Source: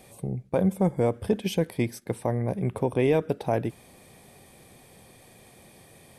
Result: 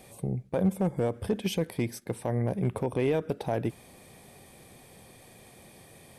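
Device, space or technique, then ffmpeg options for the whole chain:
limiter into clipper: -af "alimiter=limit=-17dB:level=0:latency=1:release=98,asoftclip=type=hard:threshold=-18.5dB"

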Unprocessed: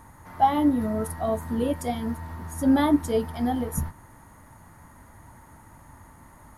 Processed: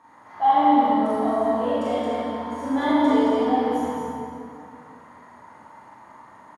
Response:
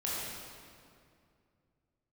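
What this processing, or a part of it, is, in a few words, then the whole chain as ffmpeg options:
station announcement: -filter_complex "[0:a]highpass=320,lowpass=4600,equalizer=frequency=1000:width_type=o:width=0.34:gain=5,aecho=1:1:40.82|221.6:0.794|0.708[link_01];[1:a]atrim=start_sample=2205[link_02];[link_01][link_02]afir=irnorm=-1:irlink=0,volume=-4dB"

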